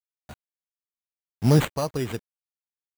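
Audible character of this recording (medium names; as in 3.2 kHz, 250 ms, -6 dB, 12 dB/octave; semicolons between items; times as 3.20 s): a quantiser's noise floor 8-bit, dither none; chopped level 0.82 Hz, depth 65%, duty 35%; aliases and images of a low sample rate 5.3 kHz, jitter 0%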